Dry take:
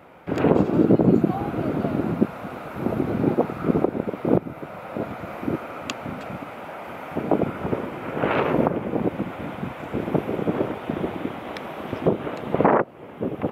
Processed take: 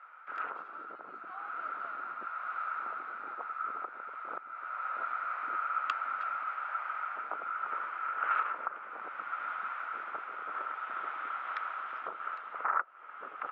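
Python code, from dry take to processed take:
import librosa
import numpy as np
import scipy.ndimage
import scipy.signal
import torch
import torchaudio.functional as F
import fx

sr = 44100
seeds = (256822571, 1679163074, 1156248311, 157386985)

y = fx.rider(x, sr, range_db=5, speed_s=0.5)
y = fx.ladder_bandpass(y, sr, hz=1400.0, resonance_pct=80)
y = y * librosa.db_to_amplitude(1.0)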